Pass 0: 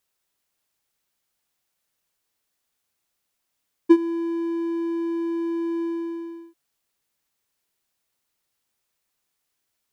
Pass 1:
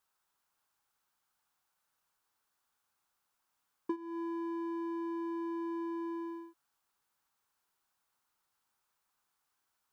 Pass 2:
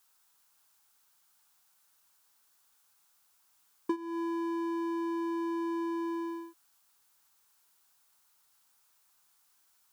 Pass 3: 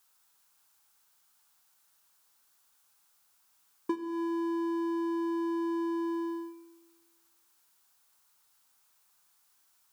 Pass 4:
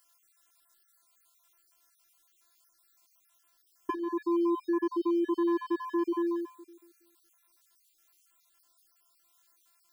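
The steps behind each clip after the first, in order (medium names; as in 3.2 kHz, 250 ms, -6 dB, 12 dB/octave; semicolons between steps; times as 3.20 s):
high-order bell 1.1 kHz +9.5 dB 1.2 oct; compression 8:1, threshold -29 dBFS, peak gain reduction 19.5 dB; trim -5.5 dB
treble shelf 2.9 kHz +11 dB; trim +4 dB
Schroeder reverb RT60 1.3 s, combs from 29 ms, DRR 10.5 dB
random holes in the spectrogram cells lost 50%; robot voice 341 Hz; trim +5.5 dB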